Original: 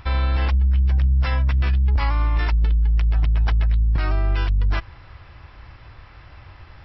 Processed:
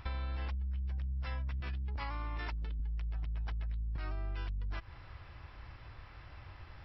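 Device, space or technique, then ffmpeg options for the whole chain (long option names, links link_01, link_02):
serial compression, peaks first: -filter_complex "[0:a]asettb=1/sr,asplit=3[link_01][link_02][link_03];[link_01]atrim=end=1.604[link_04];[link_02]atrim=start=1.6:end=2.8,asetpts=PTS-STARTPTS,afade=type=in:duration=0.004:curve=qsin,afade=type=out:start_time=1.196:duration=0.004:curve=qsin,highpass=frequency=100:poles=1[link_05];[link_03]atrim=start=2.796[link_06];[link_04][link_05]acrossfade=duration=0.004:curve1=hsin:curve2=qsin[link_07];[link_07][link_06]acrossfade=duration=0.004:curve1=qsin:curve2=hsin,acompressor=threshold=-24dB:ratio=6,acompressor=threshold=-29dB:ratio=2,volume=-7.5dB"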